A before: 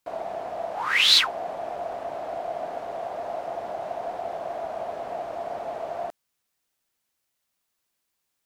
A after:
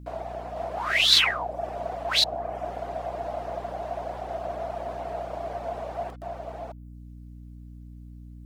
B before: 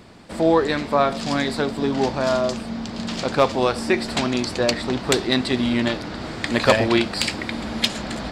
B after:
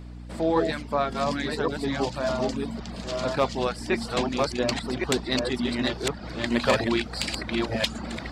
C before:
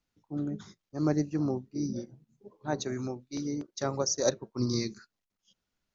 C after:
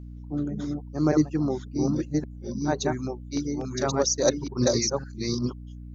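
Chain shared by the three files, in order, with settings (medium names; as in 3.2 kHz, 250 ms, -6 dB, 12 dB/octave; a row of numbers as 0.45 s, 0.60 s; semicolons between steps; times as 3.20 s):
chunks repeated in reverse 560 ms, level -2 dB; reverb removal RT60 0.57 s; hum 60 Hz, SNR 13 dB; normalise loudness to -27 LUFS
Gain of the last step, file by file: -1.5 dB, -6.5 dB, +5.0 dB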